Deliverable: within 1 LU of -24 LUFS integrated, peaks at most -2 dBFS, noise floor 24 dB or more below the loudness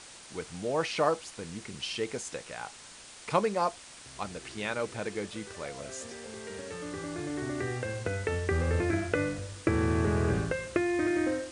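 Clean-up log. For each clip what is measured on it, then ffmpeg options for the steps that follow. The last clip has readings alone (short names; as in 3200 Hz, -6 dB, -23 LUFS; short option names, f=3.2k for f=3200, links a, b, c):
noise floor -50 dBFS; noise floor target -57 dBFS; loudness -32.5 LUFS; peak -12.5 dBFS; loudness target -24.0 LUFS
-> -af "afftdn=nr=7:nf=-50"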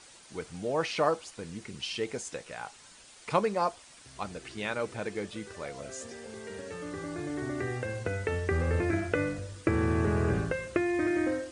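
noise floor -54 dBFS; noise floor target -57 dBFS
-> -af "afftdn=nr=6:nf=-54"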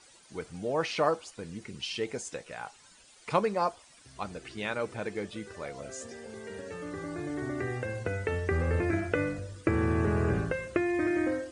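noise floor -58 dBFS; loudness -32.0 LUFS; peak -12.5 dBFS; loudness target -24.0 LUFS
-> -af "volume=8dB"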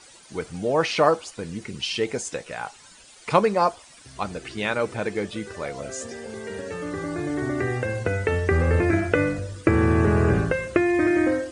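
loudness -24.0 LUFS; peak -4.5 dBFS; noise floor -50 dBFS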